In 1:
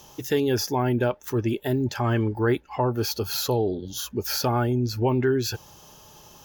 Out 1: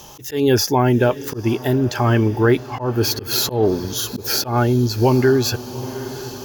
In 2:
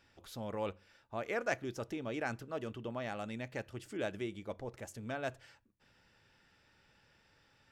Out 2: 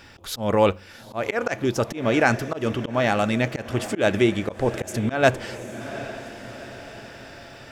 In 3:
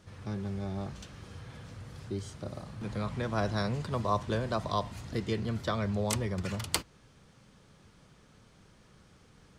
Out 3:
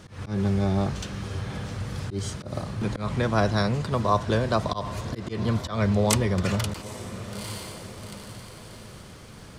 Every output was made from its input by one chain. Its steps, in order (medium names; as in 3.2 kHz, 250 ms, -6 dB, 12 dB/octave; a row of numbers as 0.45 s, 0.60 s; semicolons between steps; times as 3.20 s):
echo that smears into a reverb 794 ms, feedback 47%, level -15.5 dB; slow attack 143 ms; gain riding within 4 dB 2 s; peak normalisation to -3 dBFS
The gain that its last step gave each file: +7.0 dB, +19.0 dB, +9.0 dB